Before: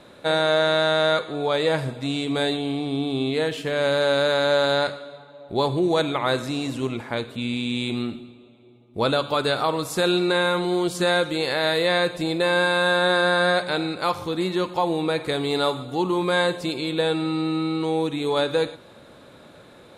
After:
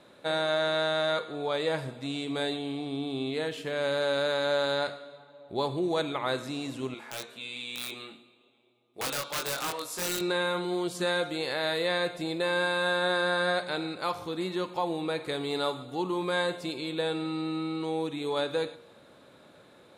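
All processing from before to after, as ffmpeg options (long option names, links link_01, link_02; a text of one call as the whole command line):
ffmpeg -i in.wav -filter_complex "[0:a]asettb=1/sr,asplit=3[link_01][link_02][link_03];[link_01]atrim=end=6.944[link_04];[link_02]atrim=start=6.94:end=10.21,asetpts=PTS-STARTPTS,afade=type=in:duration=0.004:curve=qsin,afade=type=out:start_time=3.266:duration=0.004:curve=qsin,highpass=frequency=840:poles=1,aeval=exprs='(mod(8.91*val(0)+1,2)-1)/8.91':channel_layout=same,asplit=2[link_05][link_06];[link_06]adelay=23,volume=-2.5dB[link_07];[link_05][link_07]amix=inputs=2:normalize=0,atrim=end_sample=144207[link_08];[link_03]atrim=start=10.206[link_09];[link_04][link_08]acrossfade=duration=0.004:curve1=hsin:curve2=qsin[link_10];[link_10][link_09]acrossfade=duration=0.004:curve1=qsin:curve2=hsin,lowshelf=frequency=76:gain=-11.5,bandreject=frequency=235.1:width_type=h:width=4,bandreject=frequency=470.2:width_type=h:width=4,bandreject=frequency=705.3:width_type=h:width=4,bandreject=frequency=940.4:width_type=h:width=4,bandreject=frequency=1175.5:width_type=h:width=4,bandreject=frequency=1410.6:width_type=h:width=4,bandreject=frequency=1645.7:width_type=h:width=4,bandreject=frequency=1880.8:width_type=h:width=4,bandreject=frequency=2115.9:width_type=h:width=4,bandreject=frequency=2351:width_type=h:width=4,bandreject=frequency=2586.1:width_type=h:width=4,bandreject=frequency=2821.2:width_type=h:width=4,bandreject=frequency=3056.3:width_type=h:width=4,bandreject=frequency=3291.4:width_type=h:width=4,bandreject=frequency=3526.5:width_type=h:width=4,bandreject=frequency=3761.6:width_type=h:width=4,bandreject=frequency=3996.7:width_type=h:width=4,bandreject=frequency=4231.8:width_type=h:width=4,bandreject=frequency=4466.9:width_type=h:width=4,bandreject=frequency=4702:width_type=h:width=4,bandreject=frequency=4937.1:width_type=h:width=4,bandreject=frequency=5172.2:width_type=h:width=4,bandreject=frequency=5407.3:width_type=h:width=4,bandreject=frequency=5642.4:width_type=h:width=4,bandreject=frequency=5877.5:width_type=h:width=4,bandreject=frequency=6112.6:width_type=h:width=4,bandreject=frequency=6347.7:width_type=h:width=4,bandreject=frequency=6582.8:width_type=h:width=4,bandreject=frequency=6817.9:width_type=h:width=4,bandreject=frequency=7053:width_type=h:width=4,bandreject=frequency=7288.1:width_type=h:width=4,bandreject=frequency=7523.2:width_type=h:width=4,bandreject=frequency=7758.3:width_type=h:width=4,bandreject=frequency=7993.4:width_type=h:width=4,volume=-7dB" out.wav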